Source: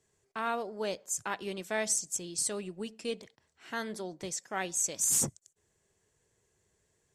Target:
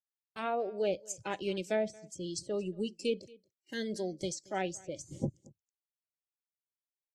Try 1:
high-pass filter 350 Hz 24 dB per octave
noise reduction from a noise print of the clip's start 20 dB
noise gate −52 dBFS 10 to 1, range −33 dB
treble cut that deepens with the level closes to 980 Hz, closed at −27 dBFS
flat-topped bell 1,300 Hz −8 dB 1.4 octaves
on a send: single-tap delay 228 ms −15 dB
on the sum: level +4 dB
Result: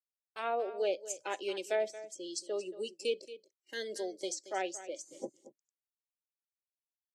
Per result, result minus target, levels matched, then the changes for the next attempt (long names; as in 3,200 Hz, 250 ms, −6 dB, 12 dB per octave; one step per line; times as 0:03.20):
250 Hz band −7.5 dB; echo-to-direct +9 dB
remove: high-pass filter 350 Hz 24 dB per octave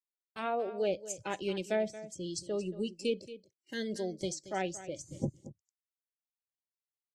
echo-to-direct +9 dB
change: single-tap delay 228 ms −24 dB